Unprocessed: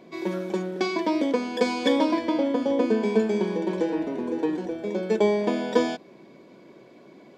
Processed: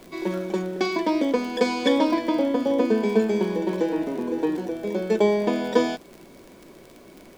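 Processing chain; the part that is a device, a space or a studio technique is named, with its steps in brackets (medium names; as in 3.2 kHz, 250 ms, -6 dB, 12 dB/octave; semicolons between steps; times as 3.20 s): vinyl LP (crackle 43 per s -34 dBFS; pink noise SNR 32 dB); trim +1.5 dB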